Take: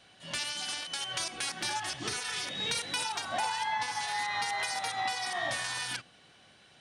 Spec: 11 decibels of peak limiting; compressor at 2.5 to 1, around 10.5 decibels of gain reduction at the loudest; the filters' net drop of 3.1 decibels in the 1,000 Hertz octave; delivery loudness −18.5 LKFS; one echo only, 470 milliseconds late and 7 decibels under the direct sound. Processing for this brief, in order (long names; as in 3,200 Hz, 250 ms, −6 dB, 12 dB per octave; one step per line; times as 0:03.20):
parametric band 1,000 Hz −4 dB
downward compressor 2.5 to 1, threshold −46 dBFS
brickwall limiter −38 dBFS
single-tap delay 470 ms −7 dB
level +28 dB